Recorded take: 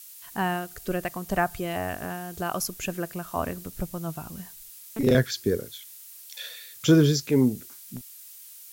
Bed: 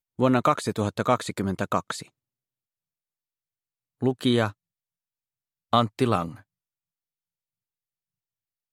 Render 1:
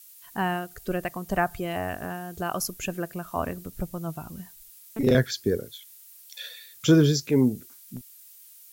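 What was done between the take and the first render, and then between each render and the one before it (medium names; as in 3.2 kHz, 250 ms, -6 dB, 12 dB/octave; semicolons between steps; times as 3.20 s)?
noise reduction 6 dB, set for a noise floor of -46 dBFS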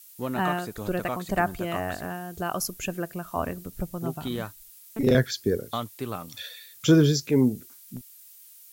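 add bed -10.5 dB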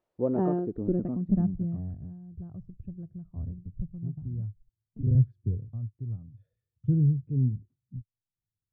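low-pass sweep 580 Hz -> 110 Hz, 0.07–2.09 s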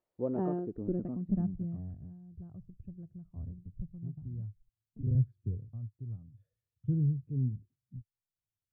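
trim -6 dB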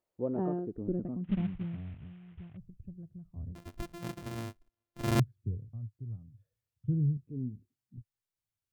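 1.24–2.57 s: CVSD coder 16 kbps; 3.55–5.20 s: sorted samples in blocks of 128 samples; 7.17–7.98 s: resonant low shelf 190 Hz -6.5 dB, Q 1.5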